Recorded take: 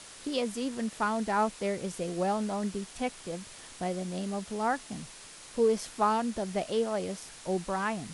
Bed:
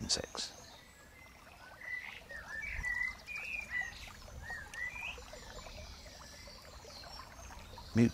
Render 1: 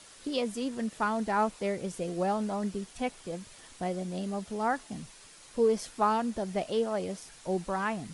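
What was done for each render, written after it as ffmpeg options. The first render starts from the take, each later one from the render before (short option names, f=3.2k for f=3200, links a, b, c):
-af "afftdn=nr=6:nf=-49"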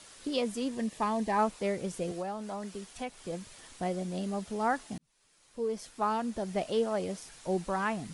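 -filter_complex "[0:a]asettb=1/sr,asplit=3[a][b][c];[a]atrim=end=0.724[d];[b]atrim=start=0.72:end=1.39,asetpts=PTS-STARTPTS,afade=t=in:d=0.004:c=qsin,afade=t=out:st=0.666:d=0.004:c=qsin,asuperstop=centerf=1400:order=4:qfactor=4.7[e];[c]atrim=start=1.386[f];[d][e]acrossfade=d=0.004:c1=hsin:c2=qsin[g];[g][f]acrossfade=d=0.004:c1=qsin:c2=hsin,asettb=1/sr,asplit=3[h][i][j];[h]atrim=end=2.114[k];[i]atrim=start=2.11:end=3.21,asetpts=PTS-STARTPTS,afade=t=in:d=0.004:c=qsin,afade=t=out:st=1.096:d=0.004:c=qsin,acrossover=split=170|470[l][m][n];[l]acompressor=threshold=-52dB:ratio=4[o];[m]acompressor=threshold=-44dB:ratio=4[p];[n]acompressor=threshold=-37dB:ratio=4[q];[o][p][q]amix=inputs=3:normalize=0[r];[j]atrim=start=3.206[s];[k][r]acrossfade=d=0.004:c1=hsin:c2=qsin[t];[t][s]acrossfade=d=0.004:c1=qsin:c2=hsin,asplit=2[u][v];[u]atrim=end=4.98,asetpts=PTS-STARTPTS,afade=t=out:st=4.976:d=0.004:c=hsin[w];[v]atrim=start=4.98,asetpts=PTS-STARTPTS,afade=t=in:d=1.68[x];[w][x]concat=n=2:v=0:a=1"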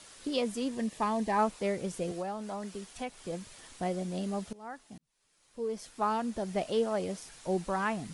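-filter_complex "[0:a]asplit=2[a][b];[a]atrim=end=4.53,asetpts=PTS-STARTPTS,afade=t=out:st=4.526:d=0.004:c=hsin:silence=0.0891251[c];[b]atrim=start=4.53,asetpts=PTS-STARTPTS,afade=t=in:d=1.45:silence=0.0891251[d];[c][d]concat=n=2:v=0:a=1"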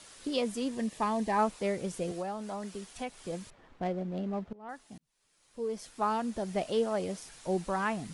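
-filter_complex "[0:a]asettb=1/sr,asplit=3[a][b][c];[a]atrim=end=3.504[d];[b]atrim=start=3.5:end=4.69,asetpts=PTS-STARTPTS,afade=t=in:d=0.004:c=qsin,afade=t=out:st=1.186:d=0.004:c=qsin,adynamicsmooth=sensitivity=4.5:basefreq=1.4k[e];[c]atrim=start=4.686[f];[d][e]acrossfade=d=0.004:c1=hsin:c2=qsin[g];[g][f]acrossfade=d=0.004:c1=qsin:c2=hsin"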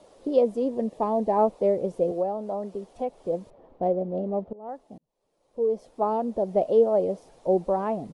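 -af "firequalizer=gain_entry='entry(110,0);entry(530,13);entry(1500,-12);entry(3700,-11);entry(7300,-15)':delay=0.05:min_phase=1"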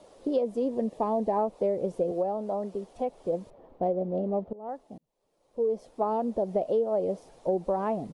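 -af "acompressor=threshold=-23dB:ratio=6"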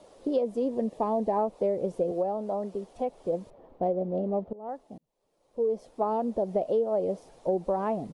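-af anull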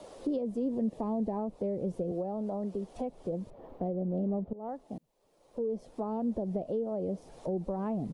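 -filter_complex "[0:a]acrossover=split=280[a][b];[b]acompressor=threshold=-46dB:ratio=2.5[c];[a][c]amix=inputs=2:normalize=0,asplit=2[d][e];[e]alimiter=level_in=10dB:limit=-24dB:level=0:latency=1,volume=-10dB,volume=-2dB[f];[d][f]amix=inputs=2:normalize=0"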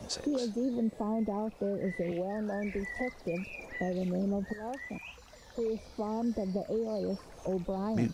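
-filter_complex "[1:a]volume=-4dB[a];[0:a][a]amix=inputs=2:normalize=0"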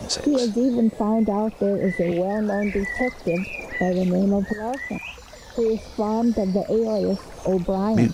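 -af "volume=11.5dB"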